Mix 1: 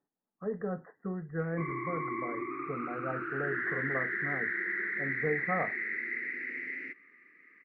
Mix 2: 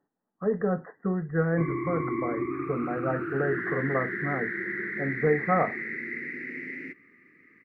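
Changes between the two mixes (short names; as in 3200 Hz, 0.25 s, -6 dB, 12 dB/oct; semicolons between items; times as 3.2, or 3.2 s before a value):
speech +8.5 dB; background: remove band-pass 1700 Hz, Q 0.5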